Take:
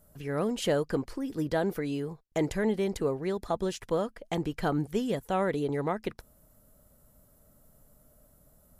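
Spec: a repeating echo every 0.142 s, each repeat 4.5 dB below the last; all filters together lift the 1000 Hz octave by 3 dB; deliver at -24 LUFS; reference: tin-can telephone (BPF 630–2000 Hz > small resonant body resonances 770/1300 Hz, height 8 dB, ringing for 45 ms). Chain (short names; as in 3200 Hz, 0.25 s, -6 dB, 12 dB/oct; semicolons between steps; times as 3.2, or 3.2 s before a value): BPF 630–2000 Hz; bell 1000 Hz +6 dB; feedback echo 0.142 s, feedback 60%, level -4.5 dB; small resonant body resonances 770/1300 Hz, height 8 dB, ringing for 45 ms; gain +7.5 dB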